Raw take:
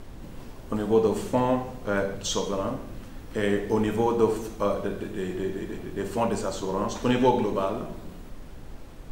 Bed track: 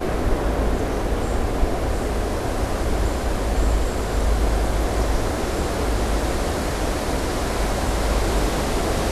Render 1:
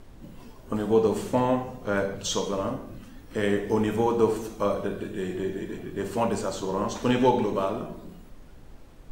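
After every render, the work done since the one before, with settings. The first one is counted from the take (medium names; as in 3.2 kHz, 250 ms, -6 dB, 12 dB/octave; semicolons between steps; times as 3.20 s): noise print and reduce 6 dB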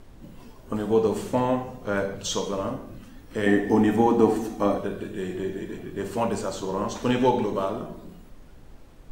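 3.46–4.78 s: small resonant body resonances 270/750/1800 Hz, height 13 dB; 7.45–7.97 s: band-stop 2.5 kHz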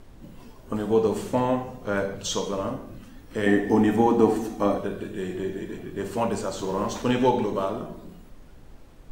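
6.59–7.02 s: companding laws mixed up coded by mu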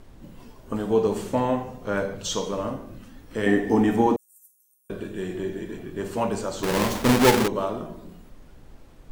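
4.16–4.90 s: inverse Chebyshev high-pass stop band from 2 kHz, stop band 80 dB; 6.63–7.48 s: square wave that keeps the level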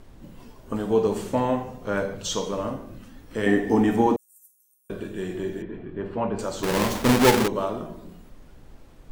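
5.62–6.39 s: distance through air 430 m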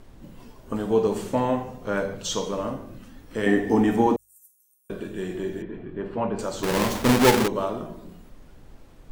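de-hum 50.01 Hz, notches 2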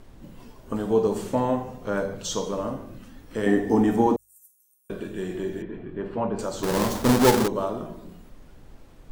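dynamic bell 2.4 kHz, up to -6 dB, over -43 dBFS, Q 1.2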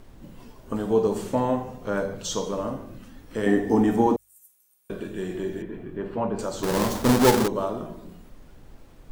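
bit crusher 12-bit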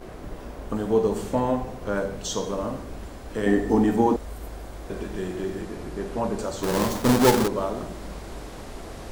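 add bed track -17 dB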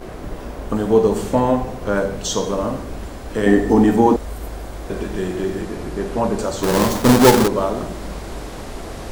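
trim +7 dB; peak limiter -2 dBFS, peak gain reduction 1.5 dB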